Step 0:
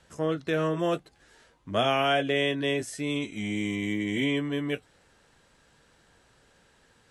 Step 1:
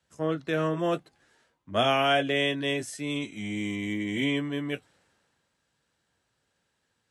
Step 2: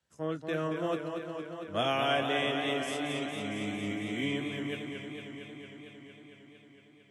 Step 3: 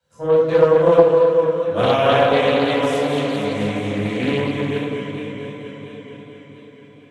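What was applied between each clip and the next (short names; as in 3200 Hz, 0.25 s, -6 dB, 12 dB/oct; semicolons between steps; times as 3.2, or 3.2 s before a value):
HPF 83 Hz; bell 440 Hz -2.5 dB 0.38 oct; three-band expander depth 40%
warbling echo 0.228 s, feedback 78%, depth 93 cents, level -6.5 dB; gain -6 dB
small resonant body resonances 500/990/3900 Hz, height 16 dB, ringing for 70 ms; reverb RT60 0.80 s, pre-delay 15 ms, DRR -7 dB; Doppler distortion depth 0.29 ms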